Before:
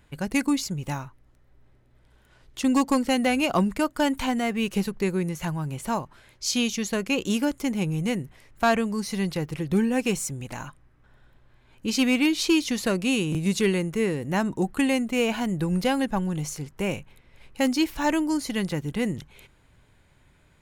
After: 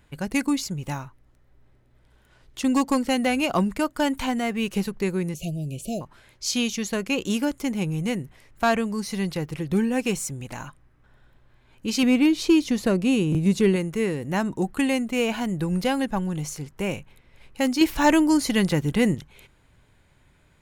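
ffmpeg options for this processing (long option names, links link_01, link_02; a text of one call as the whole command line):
ffmpeg -i in.wav -filter_complex "[0:a]asettb=1/sr,asplit=3[link_01][link_02][link_03];[link_01]atrim=end=5.344[link_04];[link_02]atrim=start=5.34:end=6.01,asetpts=PTS-STARTPTS,afade=type=in:duration=0.004:curve=qsin,afade=type=out:start_time=0.666:duration=0.004:curve=qsin,asuperstop=centerf=1300:order=20:qfactor=0.77[link_05];[link_03]atrim=start=6.006[link_06];[link_04][link_05]acrossfade=duration=0.004:curve1=hsin:curve2=qsin[link_07];[link_07][link_06]acrossfade=duration=0.004:curve1=qsin:curve2=hsin,asettb=1/sr,asplit=3[link_08][link_09][link_10];[link_08]atrim=end=12.034[link_11];[link_09]atrim=start=12.03:end=13.76,asetpts=PTS-STARTPTS,afade=type=in:duration=0.004:curve=qsin,afade=type=out:start_time=1.726:duration=0.004:curve=qsin,tiltshelf=frequency=970:gain=4.5[link_12];[link_10]atrim=start=13.756[link_13];[link_11][link_12]acrossfade=duration=0.004:curve1=hsin:curve2=qsin[link_14];[link_14][link_13]acrossfade=duration=0.004:curve1=qsin:curve2=hsin,asettb=1/sr,asplit=3[link_15][link_16][link_17];[link_15]atrim=end=17.814[link_18];[link_16]atrim=start=17.81:end=19.15,asetpts=PTS-STARTPTS,afade=type=in:duration=0.004:curve=qsin,afade=type=out:start_time=1.336:duration=0.004:curve=qsin,acontrast=52[link_19];[link_17]atrim=start=19.146[link_20];[link_18][link_19]acrossfade=duration=0.004:curve1=hsin:curve2=qsin[link_21];[link_21][link_20]acrossfade=duration=0.004:curve1=qsin:curve2=hsin" out.wav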